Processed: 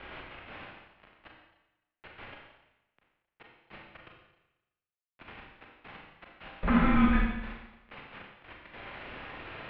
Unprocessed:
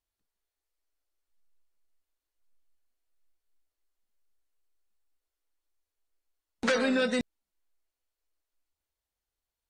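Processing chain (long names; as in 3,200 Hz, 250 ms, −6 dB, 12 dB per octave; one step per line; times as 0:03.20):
linear delta modulator 32 kbit/s, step −37.5 dBFS
four-comb reverb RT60 1 s, combs from 29 ms, DRR −1 dB
single-sideband voice off tune −280 Hz 190–3,000 Hz
level +1.5 dB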